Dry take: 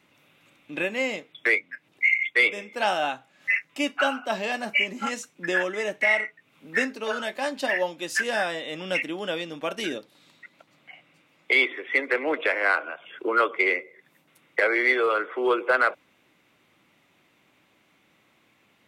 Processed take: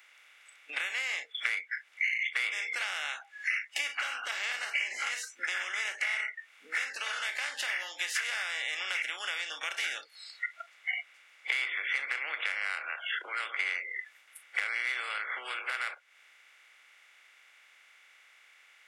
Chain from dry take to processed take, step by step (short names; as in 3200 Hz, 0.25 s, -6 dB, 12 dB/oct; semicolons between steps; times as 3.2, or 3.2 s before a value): per-bin compression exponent 0.4; spectral noise reduction 27 dB; compressor 6:1, threshold -29 dBFS, peak gain reduction 17.5 dB; Bessel high-pass 2300 Hz, order 2; gain +3.5 dB